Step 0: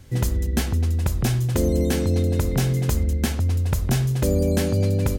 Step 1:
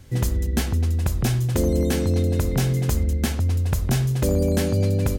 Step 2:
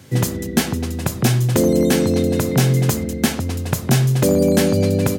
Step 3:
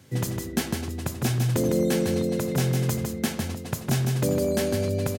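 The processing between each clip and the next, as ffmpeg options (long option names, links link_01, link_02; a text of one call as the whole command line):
ffmpeg -i in.wav -af "volume=12.5dB,asoftclip=hard,volume=-12.5dB" out.wav
ffmpeg -i in.wav -af "highpass=frequency=120:width=0.5412,highpass=frequency=120:width=1.3066,volume=7.5dB" out.wav
ffmpeg -i in.wav -af "aecho=1:1:155:0.531,volume=-9dB" out.wav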